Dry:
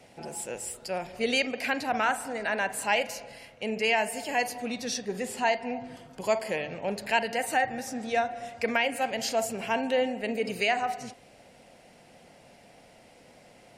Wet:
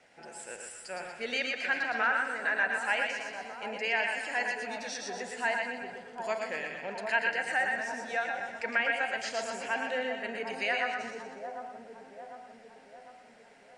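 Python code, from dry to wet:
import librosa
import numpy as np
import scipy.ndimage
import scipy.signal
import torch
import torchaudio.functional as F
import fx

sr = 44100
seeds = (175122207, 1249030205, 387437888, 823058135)

y = scipy.signal.sosfilt(scipy.signal.butter(6, 9500.0, 'lowpass', fs=sr, output='sos'), x)
y = fx.peak_eq(y, sr, hz=1600.0, db=10.5, octaves=0.7)
y = y + 10.0 ** (-5.5 / 20.0) * np.pad(y, (int(110 * sr / 1000.0), 0))[:len(y)]
y = fx.env_lowpass_down(y, sr, base_hz=1500.0, full_db=-11.5)
y = fx.peak_eq(y, sr, hz=79.0, db=-10.5, octaves=2.9)
y = fx.echo_split(y, sr, split_hz=1100.0, low_ms=750, high_ms=123, feedback_pct=52, wet_db=-6.0)
y = y * 10.0 ** (-8.0 / 20.0)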